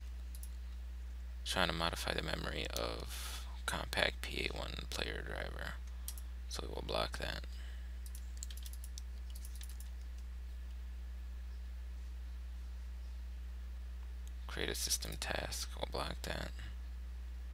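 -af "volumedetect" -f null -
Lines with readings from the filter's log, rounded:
mean_volume: -41.9 dB
max_volume: -10.8 dB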